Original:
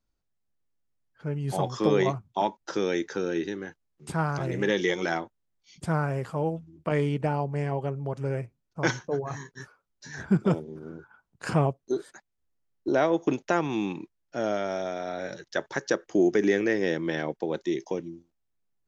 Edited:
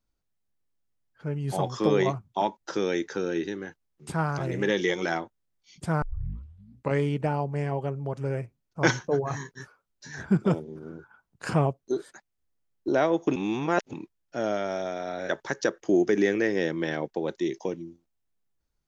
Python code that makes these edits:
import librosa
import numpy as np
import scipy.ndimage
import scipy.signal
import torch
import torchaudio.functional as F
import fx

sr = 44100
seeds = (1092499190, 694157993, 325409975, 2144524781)

y = fx.edit(x, sr, fx.tape_start(start_s=6.02, length_s=0.98),
    fx.clip_gain(start_s=8.81, length_s=0.72, db=3.5),
    fx.reverse_span(start_s=13.36, length_s=0.57),
    fx.cut(start_s=15.29, length_s=0.26), tone=tone)